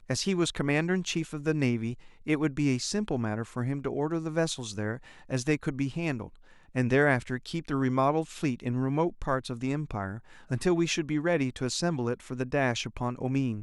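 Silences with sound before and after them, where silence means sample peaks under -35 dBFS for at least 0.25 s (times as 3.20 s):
1.94–2.27 s
4.97–5.31 s
6.26–6.75 s
10.18–10.51 s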